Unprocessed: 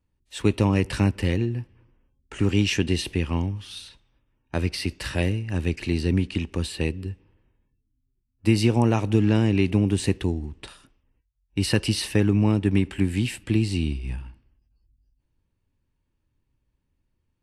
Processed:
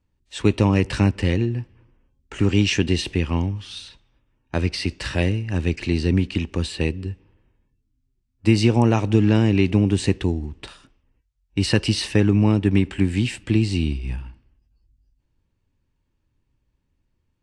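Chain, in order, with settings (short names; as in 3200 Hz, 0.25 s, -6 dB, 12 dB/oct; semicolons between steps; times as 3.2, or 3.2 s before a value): LPF 8300 Hz 24 dB/oct; gain +3 dB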